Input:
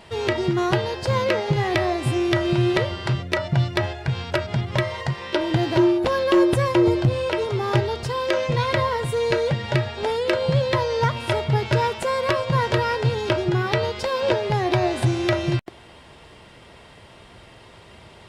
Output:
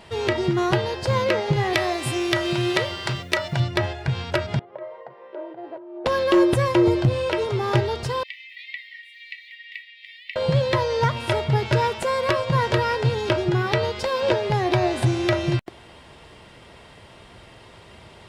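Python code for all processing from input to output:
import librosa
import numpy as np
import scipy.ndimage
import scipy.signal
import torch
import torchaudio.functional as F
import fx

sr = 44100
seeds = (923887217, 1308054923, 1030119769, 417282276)

y = fx.chain(x, sr, fx.tilt_eq(slope=2.0),
    fx.quant_dither(seeds[0], bits=10, dither='none'), at=(1.73, 3.6))
y = fx.chain(y, sr, fx.over_compress(threshold_db=-22.0, ratio=-1.0),
    fx.ladder_bandpass(hz=610.0, resonance_pct=40), at=(4.59, 6.06))
y = fx.chain(y, sr, fx.air_absorb(metres=450.0),
    fx.quant_float(bits=8),
    fx.brickwall_highpass(low_hz=1800.0), at=(8.23, 10.36))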